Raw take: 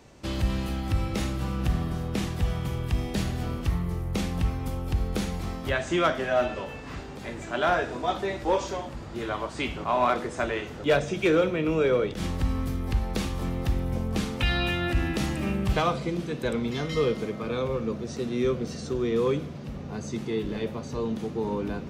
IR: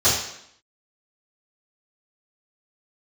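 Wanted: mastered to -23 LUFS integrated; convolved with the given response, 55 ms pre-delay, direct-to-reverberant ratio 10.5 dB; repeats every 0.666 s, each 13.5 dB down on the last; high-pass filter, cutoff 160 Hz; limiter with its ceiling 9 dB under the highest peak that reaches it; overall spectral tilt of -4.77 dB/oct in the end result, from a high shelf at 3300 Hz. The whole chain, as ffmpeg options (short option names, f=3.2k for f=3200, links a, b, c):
-filter_complex "[0:a]highpass=160,highshelf=f=3.3k:g=5,alimiter=limit=-19.5dB:level=0:latency=1,aecho=1:1:666|1332:0.211|0.0444,asplit=2[a][b];[1:a]atrim=start_sample=2205,adelay=55[c];[b][c]afir=irnorm=-1:irlink=0,volume=-29dB[d];[a][d]amix=inputs=2:normalize=0,volume=7.5dB"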